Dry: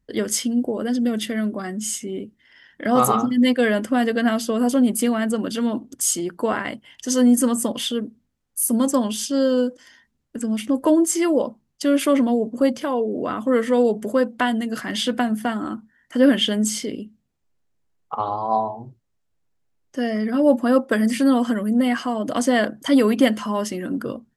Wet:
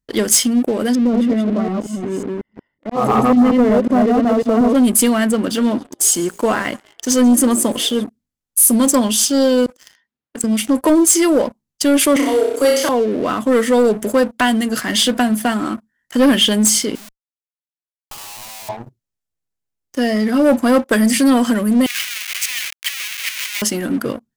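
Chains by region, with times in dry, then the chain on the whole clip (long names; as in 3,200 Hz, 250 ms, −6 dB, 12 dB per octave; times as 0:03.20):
0:00.95–0:04.75: delay that plays each chunk backwards 183 ms, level −1.5 dB + Savitzky-Golay smoothing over 65 samples + volume swells 220 ms
0:05.27–0:08.04: high-shelf EQ 3,700 Hz −7 dB + echo with shifted repeats 137 ms, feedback 61%, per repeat +58 Hz, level −22.5 dB
0:09.66–0:10.44: low-pass that shuts in the quiet parts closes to 2,400 Hz, open at −30 dBFS + high-pass filter 460 Hz 6 dB per octave + compressor whose output falls as the input rises −35 dBFS, ratio −0.5
0:12.16–0:12.89: Chebyshev high-pass filter 260 Hz, order 8 + spectral tilt +1.5 dB per octave + flutter between parallel walls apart 5.4 metres, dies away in 0.67 s
0:16.95–0:18.69: downward compressor 2.5 to 1, threshold −35 dBFS + comparator with hysteresis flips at −47 dBFS
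0:21.86–0:23.62: comparator with hysteresis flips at −32 dBFS + four-pole ladder high-pass 2,000 Hz, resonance 60%
whole clip: high-shelf EQ 4,200 Hz +10 dB; leveller curve on the samples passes 3; level −5 dB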